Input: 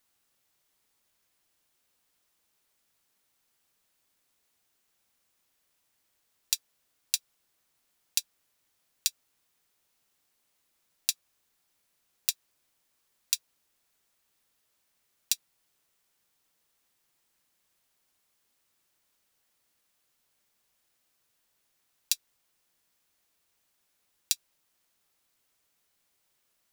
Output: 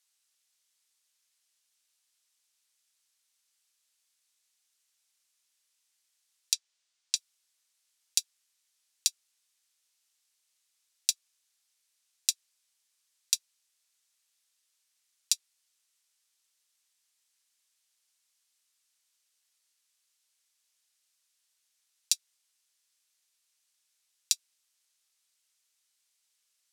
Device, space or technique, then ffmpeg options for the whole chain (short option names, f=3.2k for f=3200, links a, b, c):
piezo pickup straight into a mixer: -filter_complex "[0:a]lowpass=7.2k,aderivative,asettb=1/sr,asplit=3[a][b][c];[a]atrim=end=6.534[d];[b]atrim=start=6.53:end=7.16,asetpts=PTS-STARTPTS,afade=t=in:d=0.004:c=qsin,afade=t=out:st=0.626:d=0.004:c=qsin,lowpass=6.8k[e];[c]atrim=start=7.156[f];[d][e]acrossfade=d=0.004:c1=hsin:c2=qsin[g];[g][f]acrossfade=d=0.004:c1=qsin:c2=hsin,volume=6dB"